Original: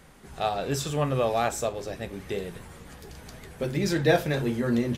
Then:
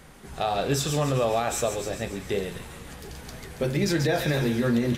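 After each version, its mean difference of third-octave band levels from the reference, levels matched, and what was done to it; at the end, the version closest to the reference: 3.5 dB: on a send: thin delay 0.138 s, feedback 62%, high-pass 2300 Hz, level -7 dB; on the sum: limiter -19 dBFS, peak gain reduction 9.5 dB; de-hum 89.29 Hz, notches 32; gain +4 dB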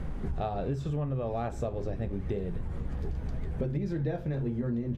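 9.0 dB: tilt -4 dB/oct; compressor 10:1, threshold -36 dBFS, peak gain reduction 26 dB; high shelf 6800 Hz -5.5 dB; gain +7 dB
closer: first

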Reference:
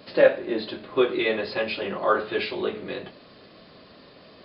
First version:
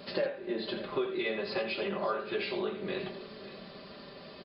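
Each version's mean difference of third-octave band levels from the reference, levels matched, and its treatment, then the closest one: 5.5 dB: comb 5.1 ms, depth 50%; compressor 5:1, threshold -31 dBFS, peak gain reduction 19 dB; on a send: tapped delay 84/574 ms -10.5/-15 dB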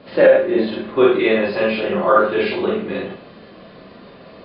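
3.0 dB: air absorption 290 m; Schroeder reverb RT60 0.33 s, combs from 32 ms, DRR -3.5 dB; maximiser +6 dB; gain -1 dB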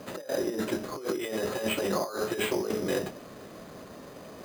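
12.5 dB: bell 3600 Hz -9.5 dB 1.3 oct; negative-ratio compressor -32 dBFS, ratio -1; sample-and-hold 8×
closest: second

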